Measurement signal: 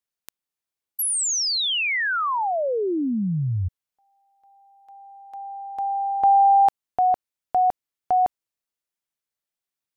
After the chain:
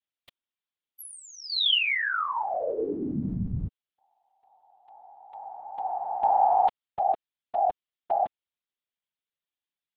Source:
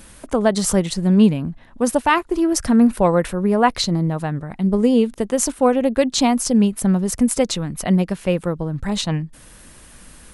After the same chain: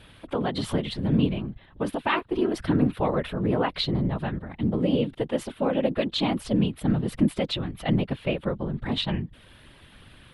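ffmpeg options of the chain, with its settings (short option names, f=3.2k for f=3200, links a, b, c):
-af "alimiter=limit=-9dB:level=0:latency=1:release=117,highshelf=f=4.7k:t=q:w=3:g=-11.5,afftfilt=real='hypot(re,im)*cos(2*PI*random(0))':imag='hypot(re,im)*sin(2*PI*random(1))':win_size=512:overlap=0.75"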